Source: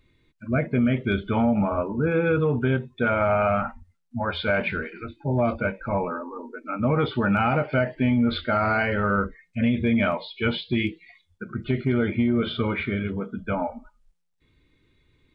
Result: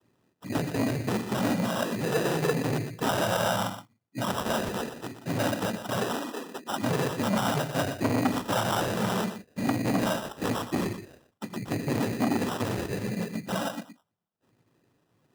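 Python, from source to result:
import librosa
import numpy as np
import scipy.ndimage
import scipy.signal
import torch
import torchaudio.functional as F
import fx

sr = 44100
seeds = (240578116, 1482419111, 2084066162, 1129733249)

p1 = fx.peak_eq(x, sr, hz=830.0, db=-5.0, octaves=2.6)
p2 = fx.level_steps(p1, sr, step_db=20)
p3 = p1 + F.gain(torch.from_numpy(p2), -0.5).numpy()
p4 = fx.noise_vocoder(p3, sr, seeds[0], bands=16)
p5 = fx.sample_hold(p4, sr, seeds[1], rate_hz=2200.0, jitter_pct=0)
p6 = fx.highpass(p5, sr, hz=130.0, slope=6)
p7 = p6 + fx.echo_single(p6, sr, ms=120, db=-11.5, dry=0)
y = fx.transformer_sat(p7, sr, knee_hz=980.0)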